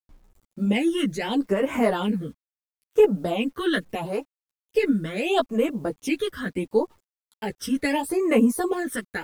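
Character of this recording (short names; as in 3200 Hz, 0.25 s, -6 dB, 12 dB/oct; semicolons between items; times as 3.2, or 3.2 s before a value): phasing stages 12, 0.75 Hz, lowest notch 770–4200 Hz; a quantiser's noise floor 10-bit, dither none; a shimmering, thickened sound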